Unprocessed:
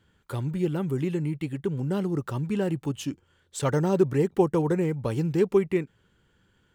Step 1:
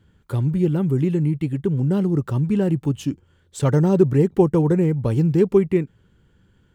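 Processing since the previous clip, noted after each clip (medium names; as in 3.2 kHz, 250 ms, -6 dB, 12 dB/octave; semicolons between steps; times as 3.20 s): bass shelf 380 Hz +10.5 dB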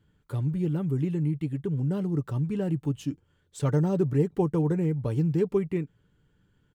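comb 6.8 ms, depth 31%; trim -8.5 dB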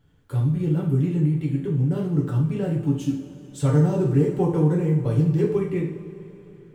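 added noise brown -67 dBFS; two-slope reverb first 0.52 s, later 3.8 s, from -18 dB, DRR -2.5 dB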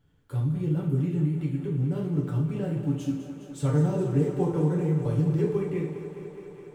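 thinning echo 207 ms, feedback 83%, high-pass 180 Hz, level -11.5 dB; trim -5 dB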